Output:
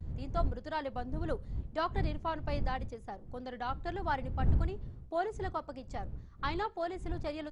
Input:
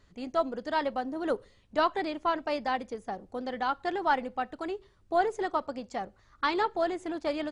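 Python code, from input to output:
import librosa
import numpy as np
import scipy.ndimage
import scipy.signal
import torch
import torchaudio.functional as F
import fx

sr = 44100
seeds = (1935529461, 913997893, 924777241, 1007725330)

y = fx.dmg_wind(x, sr, seeds[0], corner_hz=81.0, level_db=-29.0)
y = fx.vibrato(y, sr, rate_hz=0.74, depth_cents=50.0)
y = y * librosa.db_to_amplitude(-7.5)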